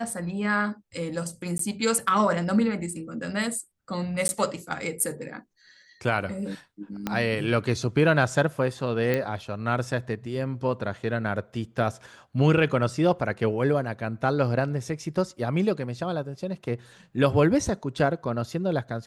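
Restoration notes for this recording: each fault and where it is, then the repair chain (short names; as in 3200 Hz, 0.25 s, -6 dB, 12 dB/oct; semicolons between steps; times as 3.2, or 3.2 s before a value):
1.58–1.59 gap 13 ms
4.28–4.29 gap 11 ms
7.07 pop -13 dBFS
9.14 pop -13 dBFS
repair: de-click; interpolate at 1.58, 13 ms; interpolate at 4.28, 11 ms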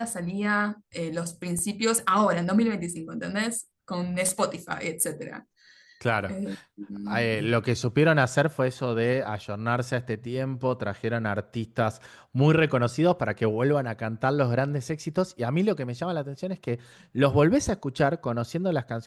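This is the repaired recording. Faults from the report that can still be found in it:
7.07 pop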